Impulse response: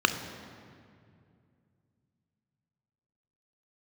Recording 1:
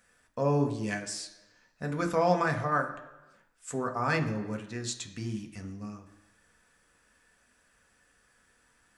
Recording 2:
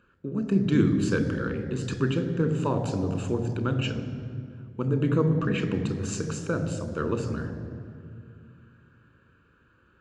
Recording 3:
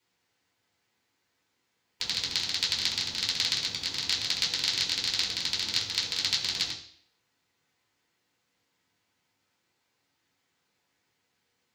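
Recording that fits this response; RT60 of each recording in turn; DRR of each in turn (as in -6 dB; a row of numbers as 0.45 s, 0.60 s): 2; 1.1 s, 2.3 s, 0.60 s; 3.5 dB, 7.5 dB, -6.0 dB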